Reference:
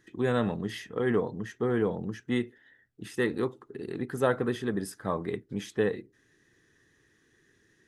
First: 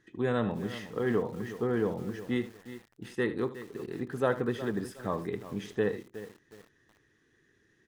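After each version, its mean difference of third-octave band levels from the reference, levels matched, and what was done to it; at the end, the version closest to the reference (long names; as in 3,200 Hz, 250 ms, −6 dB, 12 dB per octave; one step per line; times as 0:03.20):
5.5 dB: high-shelf EQ 6,500 Hz −9.5 dB
single-tap delay 76 ms −14.5 dB
feedback echo at a low word length 365 ms, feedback 35%, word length 7 bits, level −13 dB
level −2 dB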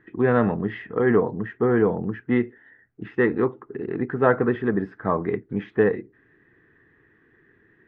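3.5 dB: low-pass filter 2,100 Hz 24 dB per octave
low-shelf EQ 160 Hz −3.5 dB
notch filter 550 Hz, Q 12
level +8.5 dB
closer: second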